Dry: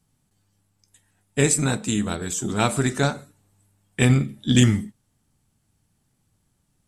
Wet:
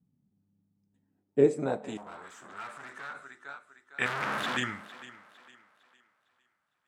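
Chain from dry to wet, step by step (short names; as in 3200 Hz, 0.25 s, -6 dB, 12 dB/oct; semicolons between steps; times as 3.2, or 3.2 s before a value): 4.06–4.57 infinite clipping; on a send: thinning echo 0.456 s, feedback 38%, high-pass 220 Hz, level -16.5 dB; 1.97–3.15 on the sum: tube stage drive 33 dB, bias 0.75; band-pass sweep 200 Hz -> 1400 Hz, 0.92–2.36; gain +2.5 dB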